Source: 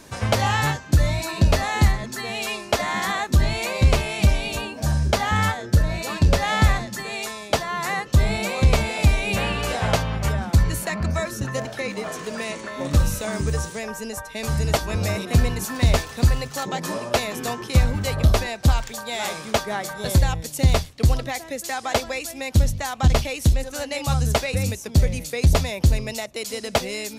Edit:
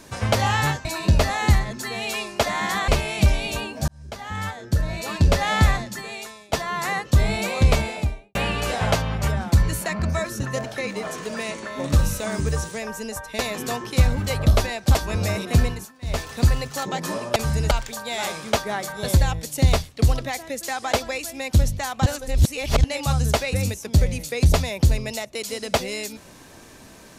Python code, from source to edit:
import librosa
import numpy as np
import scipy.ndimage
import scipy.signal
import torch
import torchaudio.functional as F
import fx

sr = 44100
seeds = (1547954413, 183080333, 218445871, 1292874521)

y = fx.studio_fade_out(x, sr, start_s=8.73, length_s=0.63)
y = fx.edit(y, sr, fx.cut(start_s=0.85, length_s=0.33),
    fx.cut(start_s=3.21, length_s=0.68),
    fx.fade_in_span(start_s=4.89, length_s=1.39),
    fx.fade_out_to(start_s=6.78, length_s=0.76, floor_db=-14.5),
    fx.swap(start_s=14.4, length_s=0.35, other_s=17.16, other_length_s=1.56),
    fx.fade_down_up(start_s=15.42, length_s=0.69, db=-23.0, fade_s=0.3),
    fx.reverse_span(start_s=23.07, length_s=0.78), tone=tone)